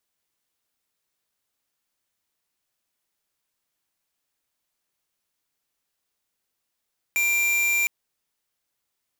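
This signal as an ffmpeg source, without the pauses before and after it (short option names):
-f lavfi -i "aevalsrc='0.0794*(2*lt(mod(2370*t,1),0.5)-1)':d=0.71:s=44100"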